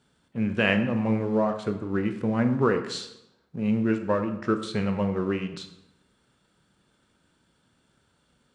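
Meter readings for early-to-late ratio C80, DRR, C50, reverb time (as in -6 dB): 12.0 dB, 7.0 dB, 10.0 dB, 0.85 s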